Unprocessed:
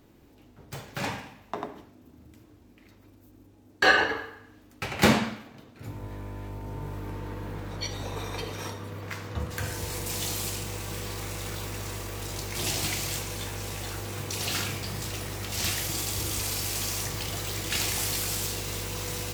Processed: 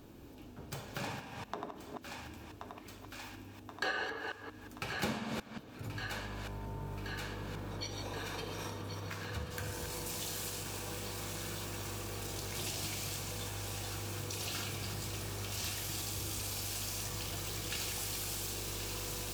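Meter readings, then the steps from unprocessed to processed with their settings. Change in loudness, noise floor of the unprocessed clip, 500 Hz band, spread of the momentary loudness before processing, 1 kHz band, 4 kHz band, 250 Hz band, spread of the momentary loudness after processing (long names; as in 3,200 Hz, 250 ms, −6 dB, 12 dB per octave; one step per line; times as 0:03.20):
−9.5 dB, −56 dBFS, −9.0 dB, 15 LU, −9.5 dB, −8.5 dB, −10.0 dB, 11 LU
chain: delay that plays each chunk backwards 180 ms, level −8 dB
notch filter 2,000 Hz, Q 8.1
on a send: feedback echo with a high-pass in the loop 1,078 ms, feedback 79%, high-pass 810 Hz, level −11.5 dB
on the sum: downward compressor 2.5 to 1, threshold −46 dBFS, peak gain reduction 20 dB
level +3 dB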